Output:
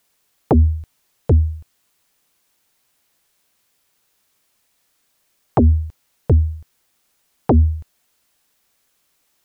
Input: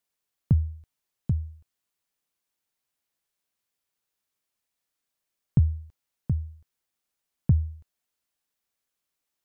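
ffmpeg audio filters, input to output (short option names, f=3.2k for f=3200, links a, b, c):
-af "aeval=exprs='0.316*sin(PI/2*3.98*val(0)/0.316)':c=same,volume=2dB"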